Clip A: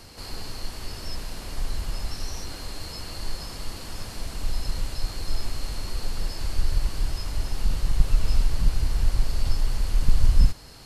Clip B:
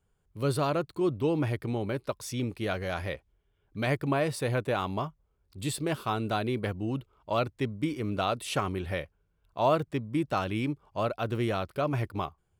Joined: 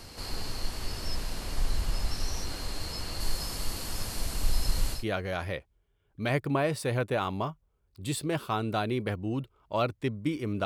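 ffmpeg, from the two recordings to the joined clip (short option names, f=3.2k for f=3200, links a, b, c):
-filter_complex "[0:a]asettb=1/sr,asplit=3[a][b][c];[a]atrim=end=3.204[d];[b]atrim=start=3.2:end=5.05,asetpts=PTS-STARTPTS,afade=t=in:d=0.004:c=qsin,afade=t=out:st=1.846:d=0.004:c=qsin,highshelf=f=8.5k:g=10[e];[c]atrim=start=5.046[f];[d][e]acrossfade=d=0.004:c1=hsin:c2=qsin[g];[g][f]acrossfade=d=0.004:c1=qsin:c2=hsin,apad=whole_dur=10.65,atrim=end=10.65,atrim=end=5.05,asetpts=PTS-STARTPTS[h];[1:a]atrim=start=2.48:end=8.22,asetpts=PTS-STARTPTS[i];[h][i]acrossfade=d=0.14:c1=tri:c2=tri"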